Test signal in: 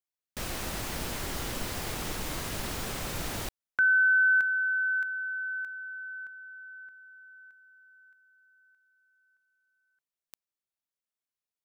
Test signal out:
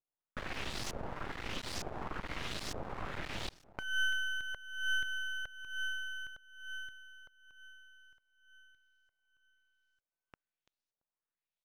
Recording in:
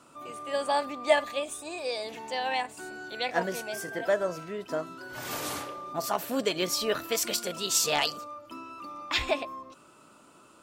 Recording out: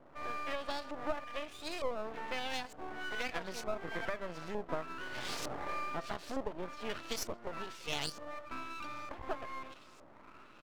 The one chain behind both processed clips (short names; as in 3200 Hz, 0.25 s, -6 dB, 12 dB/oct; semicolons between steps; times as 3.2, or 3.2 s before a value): compressor 10:1, threshold -34 dBFS; on a send: feedback echo 0.338 s, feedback 26%, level -21 dB; on the sum: LFO low-pass saw up 1.1 Hz 570–6400 Hz; half-wave rectifier; gain +1 dB